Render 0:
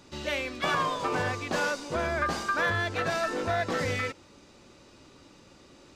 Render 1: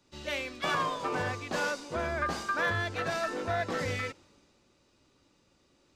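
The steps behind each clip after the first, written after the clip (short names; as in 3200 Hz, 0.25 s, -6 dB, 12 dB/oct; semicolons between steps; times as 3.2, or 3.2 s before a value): three-band expander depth 40%; gain -3 dB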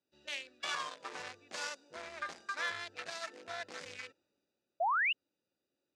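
Wiener smoothing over 41 samples; weighting filter ITU-R 468; painted sound rise, 4.8–5.13, 630–3000 Hz -22 dBFS; gain -8.5 dB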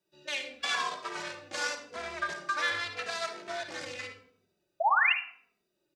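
on a send at -6 dB: reverb RT60 0.60 s, pre-delay 46 ms; on the sum: endless flanger 2.7 ms -0.87 Hz; gain +9 dB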